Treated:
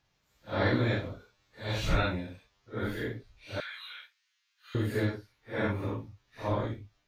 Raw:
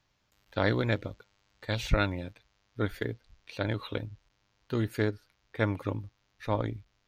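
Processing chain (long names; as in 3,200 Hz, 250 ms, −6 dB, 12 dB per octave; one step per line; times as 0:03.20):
random phases in long frames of 200 ms
0:03.60–0:04.75: high-pass filter 1,500 Hz 24 dB per octave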